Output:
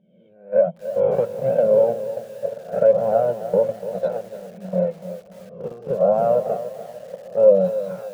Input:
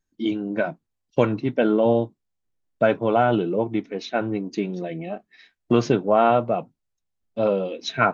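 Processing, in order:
peak hold with a rise ahead of every peak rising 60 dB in 0.88 s
downward compressor 3 to 1, threshold −20 dBFS, peak gain reduction 7.5 dB
feedback delay with all-pass diffusion 662 ms, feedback 46%, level −9 dB
flanger 1.3 Hz, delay 1.1 ms, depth 1.6 ms, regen +23%
automatic gain control gain up to 8 dB
pair of resonant band-passes 310 Hz, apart 1.6 octaves
noise gate −27 dBFS, range −15 dB
feedback echo at a low word length 293 ms, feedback 35%, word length 8 bits, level −12 dB
level +8 dB

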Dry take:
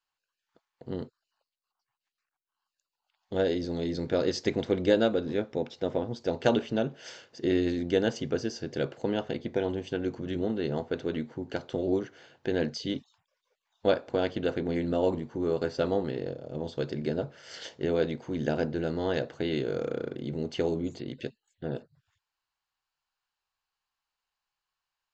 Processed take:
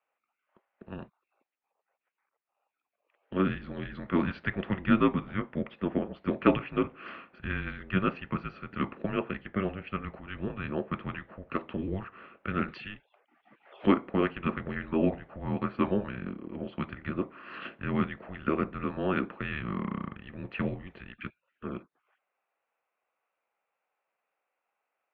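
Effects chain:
single-sideband voice off tune −290 Hz 590–2,800 Hz
0:12.68–0:13.87: multiband upward and downward compressor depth 100%
level +6.5 dB

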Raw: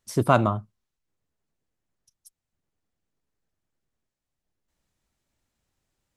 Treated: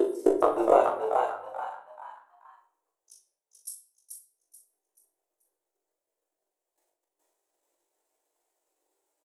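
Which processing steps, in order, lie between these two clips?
slices reordered back to front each 94 ms, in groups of 3
elliptic high-pass filter 340 Hz, stop band 40 dB
flat-topped bell 2,500 Hz −9.5 dB 2.7 octaves
downward compressor 2 to 1, threshold −34 dBFS, peak gain reduction 10 dB
transient designer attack +11 dB, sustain −12 dB
flanger 0.9 Hz, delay 0.9 ms, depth 1.7 ms, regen +85%
tape wow and flutter 27 cents
time stretch by overlap-add 1.5×, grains 102 ms
double-tracking delay 40 ms −6 dB
on a send: echo with shifted repeats 433 ms, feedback 32%, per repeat +91 Hz, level −4.5 dB
on the sum: rectangular room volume 110 cubic metres, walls mixed, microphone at 0.5 metres
level +8 dB

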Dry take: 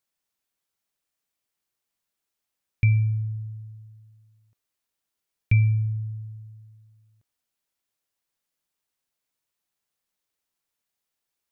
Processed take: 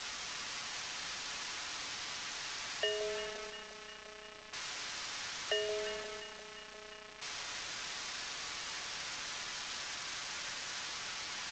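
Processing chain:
linear delta modulator 32 kbit/s, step −32.5 dBFS
ring modulation 530 Hz
first difference
comb filter 7 ms, depth 67%
in parallel at −11.5 dB: soft clipping −40 dBFS, distortion −16 dB
on the sum: three-way crossover with the lows and the highs turned down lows −15 dB, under 580 Hz, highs −13 dB, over 2,000 Hz
bit reduction 9 bits
on a send: delay that swaps between a low-pass and a high-pass 175 ms, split 1,000 Hz, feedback 81%, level −9 dB
on the sum: level +12.5 dB
G.722 64 kbit/s 16,000 Hz

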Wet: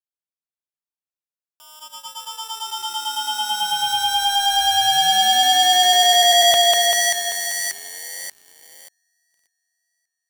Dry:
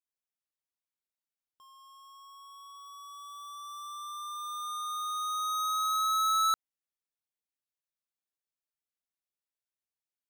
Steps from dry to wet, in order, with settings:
Butterworth high-pass 260 Hz 72 dB per octave
echo with a time of its own for lows and highs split 3,000 Hz, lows 195 ms, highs 586 ms, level −4.5 dB
ring modulation 2,000 Hz
leveller curve on the samples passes 5
level +5.5 dB

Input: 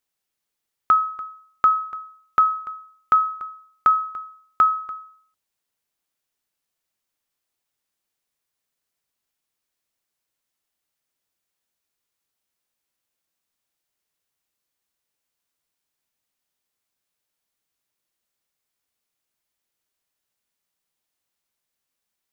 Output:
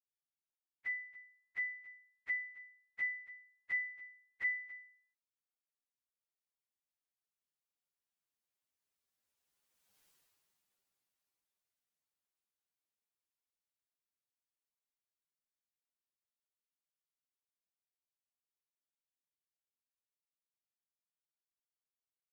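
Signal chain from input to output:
phase-vocoder pitch shift without resampling +7 semitones
source passing by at 0:10.07, 13 m/s, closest 2 metres
level +15 dB

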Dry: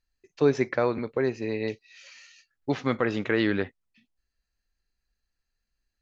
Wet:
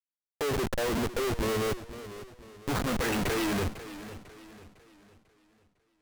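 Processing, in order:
low-pass filter sweep 900 Hz → 4,000 Hz, 0:02.62–0:03.38
comparator with hysteresis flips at −37 dBFS
feedback echo with a swinging delay time 500 ms, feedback 41%, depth 136 cents, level −14 dB

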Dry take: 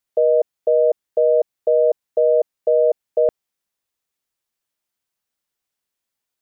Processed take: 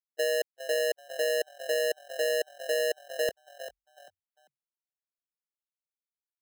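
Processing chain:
noise gate −14 dBFS, range −42 dB
echo with shifted repeats 394 ms, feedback 36%, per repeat +44 Hz, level −17.5 dB
output level in coarse steps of 13 dB
0:01.80–0:02.26: log-companded quantiser 8 bits
treble cut that deepens with the level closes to 780 Hz, closed at −24 dBFS
decimation without filtering 19×

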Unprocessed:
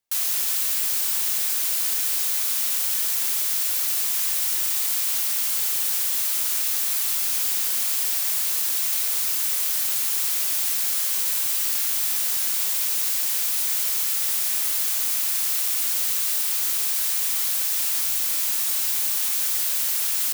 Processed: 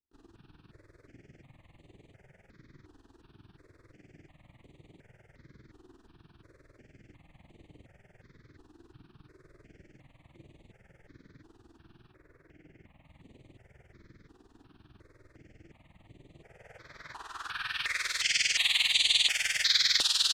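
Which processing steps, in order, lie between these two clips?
0:12.09–0:13.05: flat-topped bell 6,100 Hz −10 dB
in parallel at −1 dB: brickwall limiter −20 dBFS, peak gain reduction 10 dB
on the sum: soft clipping −16.5 dBFS, distortion −15 dB
flutter between parallel walls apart 5.1 metres, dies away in 0.32 s
amplitude modulation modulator 20 Hz, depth 85%
double-tracking delay 33 ms −12.5 dB
low-pass filter sweep 300 Hz → 3,900 Hz, 0:16.26–0:18.31
octave-band graphic EQ 125/250/500/1,000/2,000/4,000/8,000 Hz +5/−11/−3/−3/+10/+6/+7 dB
step-sequenced phaser 2.8 Hz 580–5,300 Hz

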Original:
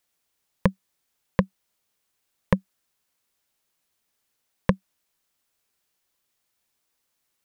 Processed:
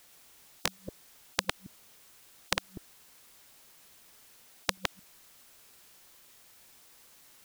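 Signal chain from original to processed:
delay that plays each chunk backwards 111 ms, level −7 dB
every bin compressed towards the loudest bin 10 to 1
level +1.5 dB

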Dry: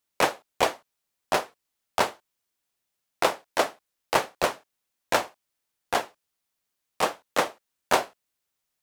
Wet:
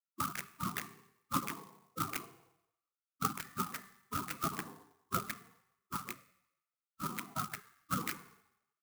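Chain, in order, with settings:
spectral envelope exaggerated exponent 1.5
Butterworth low-pass 1,100 Hz 72 dB per octave
far-end echo of a speakerphone 150 ms, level −16 dB
convolution reverb RT60 0.85 s, pre-delay 3 ms, DRR 13.5 dB
gate on every frequency bin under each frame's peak −25 dB weak
high-pass filter 160 Hz 12 dB per octave
converter with an unsteady clock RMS 0.064 ms
level +18 dB

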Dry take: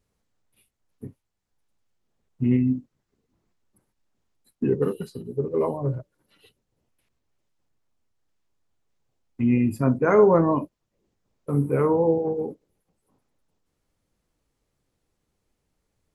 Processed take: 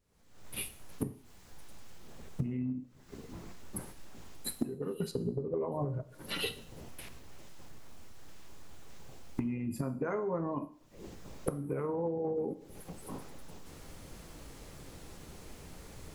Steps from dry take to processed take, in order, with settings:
camcorder AGC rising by 64 dB per second
0:05.11–0:05.72: low-pass filter 1,400 Hz 6 dB per octave
downward compressor 12 to 1, threshold −27 dBFS, peak gain reduction 22.5 dB
dense smooth reverb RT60 0.57 s, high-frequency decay 1×, DRR 10.5 dB
level −4 dB

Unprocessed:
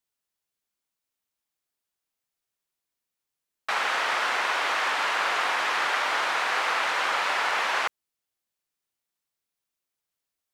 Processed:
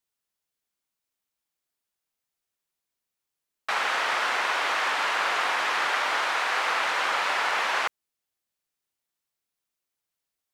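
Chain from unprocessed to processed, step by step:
0:06.18–0:06.64: low-shelf EQ 120 Hz −12 dB

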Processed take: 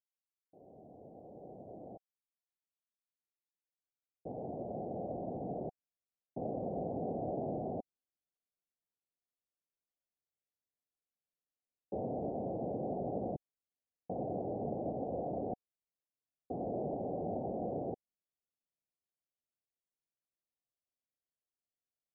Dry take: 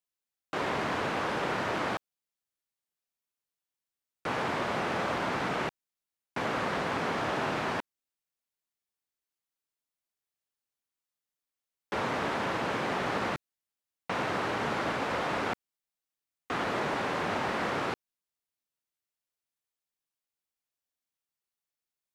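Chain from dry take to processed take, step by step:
fade in at the beginning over 6.92 s
Chebyshev low-pass filter 750 Hz, order 6
level −3 dB

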